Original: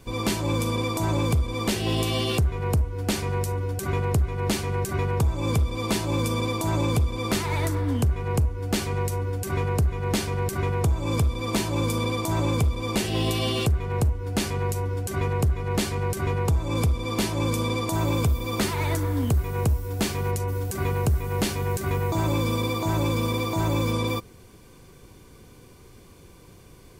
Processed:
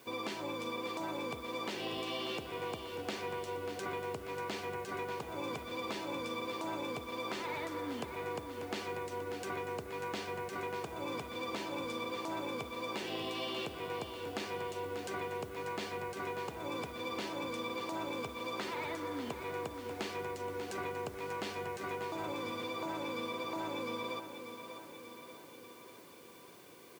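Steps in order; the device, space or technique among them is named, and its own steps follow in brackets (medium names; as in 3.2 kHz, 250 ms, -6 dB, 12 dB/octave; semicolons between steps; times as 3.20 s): baby monitor (band-pass 330–3400 Hz; compression, threshold -34 dBFS, peak gain reduction 10 dB; white noise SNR 28 dB); treble shelf 4.5 kHz +7 dB; feedback delay 590 ms, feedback 59%, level -9.5 dB; trim -3 dB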